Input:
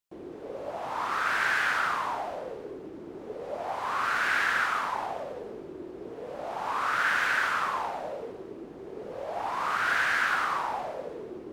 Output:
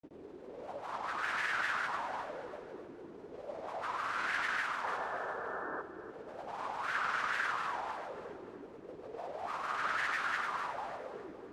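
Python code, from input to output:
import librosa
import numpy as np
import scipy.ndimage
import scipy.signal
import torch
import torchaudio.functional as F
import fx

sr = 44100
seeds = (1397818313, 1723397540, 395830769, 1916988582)

p1 = scipy.signal.sosfilt(scipy.signal.butter(2, 10000.0, 'lowpass', fs=sr, output='sos'), x)
p2 = fx.granulator(p1, sr, seeds[0], grain_ms=100.0, per_s=20.0, spray_ms=100.0, spread_st=3)
p3 = fx.spec_paint(p2, sr, seeds[1], shape='noise', start_s=4.83, length_s=0.99, low_hz=370.0, high_hz=1800.0, level_db=-34.0)
p4 = p3 + fx.echo_feedback(p3, sr, ms=286, feedback_pct=47, wet_db=-13, dry=0)
y = p4 * librosa.db_to_amplitude(-7.0)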